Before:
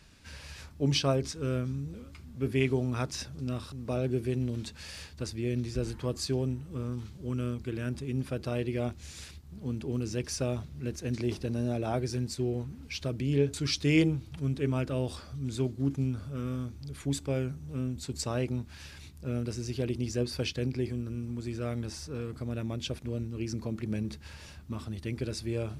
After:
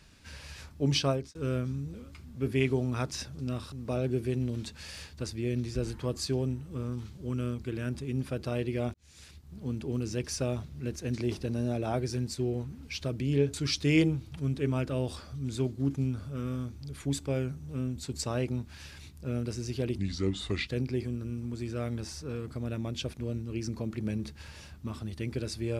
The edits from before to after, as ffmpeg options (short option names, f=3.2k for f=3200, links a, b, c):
-filter_complex "[0:a]asplit=5[a][b][c][d][e];[a]atrim=end=1.35,asetpts=PTS-STARTPTS,afade=t=out:st=1.07:d=0.28[f];[b]atrim=start=1.35:end=8.94,asetpts=PTS-STARTPTS,afade=t=in:d=0.004:c=hsin,afade=t=out:st=7.586:d=0.004:c=hsin[g];[c]atrim=start=8.94:end=19.984,asetpts=PTS-STARTPTS,afade=t=in:d=0.62[h];[d]atrim=start=19.98:end=20.53,asetpts=PTS-STARTPTS,asetrate=34839,aresample=44100[i];[e]atrim=start=20.526[j];[f][g][h]concat=n=3:v=0:a=1[k];[k][i]acrossfade=d=0.004:c1=hsin:c2=hsin[l];[l][j]acrossfade=d=0.004:c1=hsin:c2=hsin"